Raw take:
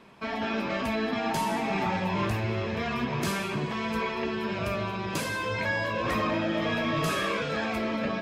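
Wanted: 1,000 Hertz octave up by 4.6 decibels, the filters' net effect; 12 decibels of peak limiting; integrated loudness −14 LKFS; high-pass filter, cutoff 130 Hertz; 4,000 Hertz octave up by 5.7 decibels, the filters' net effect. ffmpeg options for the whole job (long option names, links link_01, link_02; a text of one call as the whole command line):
ffmpeg -i in.wav -af "highpass=130,equalizer=frequency=1000:width_type=o:gain=5,equalizer=frequency=4000:width_type=o:gain=7,volume=19.5dB,alimiter=limit=-6.5dB:level=0:latency=1" out.wav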